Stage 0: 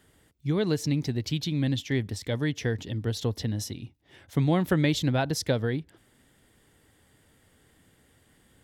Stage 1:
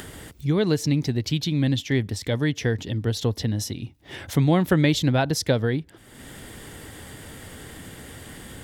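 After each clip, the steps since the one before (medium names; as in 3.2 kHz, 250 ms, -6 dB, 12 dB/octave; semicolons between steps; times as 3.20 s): upward compressor, threshold -30 dBFS; trim +4.5 dB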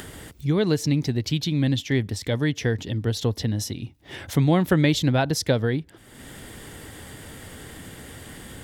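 no audible change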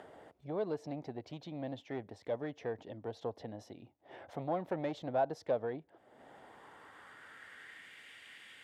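saturation -16 dBFS, distortion -15 dB; band-pass sweep 680 Hz -> 2.4 kHz, 6.15–8.04 s; trim -2.5 dB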